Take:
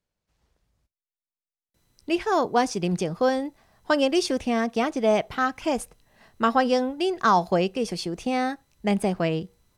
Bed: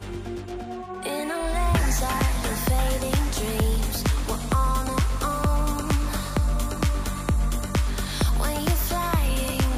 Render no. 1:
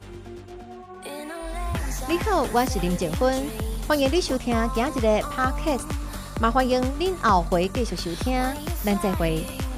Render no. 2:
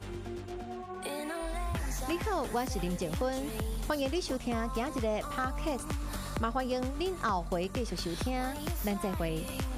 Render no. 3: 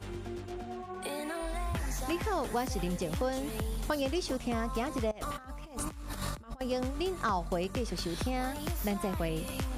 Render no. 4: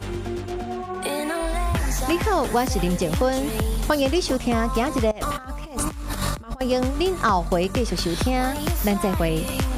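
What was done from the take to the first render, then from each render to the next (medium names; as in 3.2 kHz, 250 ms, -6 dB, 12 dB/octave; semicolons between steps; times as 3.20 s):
add bed -6.5 dB
compression 2.5:1, threshold -34 dBFS, peak gain reduction 13 dB
5.11–6.61 s: compressor with a negative ratio -39 dBFS, ratio -0.5
trim +11 dB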